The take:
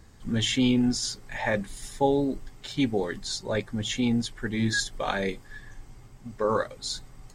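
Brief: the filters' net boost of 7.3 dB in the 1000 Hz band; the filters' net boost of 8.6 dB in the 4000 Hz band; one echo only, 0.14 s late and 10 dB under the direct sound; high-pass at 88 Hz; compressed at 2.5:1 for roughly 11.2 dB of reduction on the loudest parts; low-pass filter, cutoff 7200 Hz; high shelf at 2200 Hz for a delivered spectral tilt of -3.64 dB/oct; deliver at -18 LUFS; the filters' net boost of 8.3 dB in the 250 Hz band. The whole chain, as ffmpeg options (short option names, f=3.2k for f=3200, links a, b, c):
-af "highpass=88,lowpass=7.2k,equalizer=f=250:t=o:g=8.5,equalizer=f=1k:t=o:g=7.5,highshelf=f=2.2k:g=4.5,equalizer=f=4k:t=o:g=6.5,acompressor=threshold=-29dB:ratio=2.5,aecho=1:1:140:0.316,volume=11dB"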